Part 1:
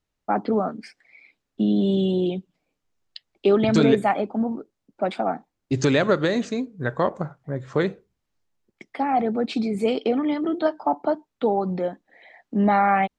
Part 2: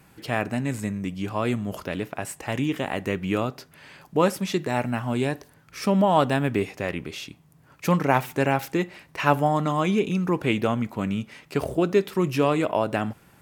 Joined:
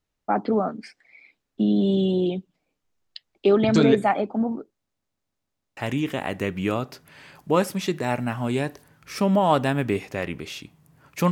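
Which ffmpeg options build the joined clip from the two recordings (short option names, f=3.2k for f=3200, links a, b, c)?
-filter_complex "[0:a]apad=whole_dur=11.31,atrim=end=11.31,asplit=7[a][b][c][d][e][f][g];[a]atrim=end=4.872[h];[b]atrim=start=4.718:end=4.872[i];[c]atrim=start=4.718:end=4.872[j];[d]atrim=start=4.718:end=4.872[k];[e]atrim=start=4.718:end=4.872[l];[f]atrim=start=4.718:end=4.872[m];[g]atrim=start=4.718:end=4.872[n];[1:a]atrim=start=2.428:end=7.97[o];[h][i]acrossfade=d=0.004:c1=hsin:c2=hsin[p];[p][j]acrossfade=d=0.004:c1=hsin:c2=hsin[q];[q][k]acrossfade=d=0.004:c1=hsin:c2=hsin[r];[r][l]acrossfade=d=0.004:c1=hsin:c2=hsin[s];[s][m]acrossfade=d=0.004:c1=hsin:c2=hsin[t];[t][n]acrossfade=d=0.004:c1=hsin:c2=hsin[u];[u][o]acrossfade=d=0.004:c1=hsin:c2=hsin"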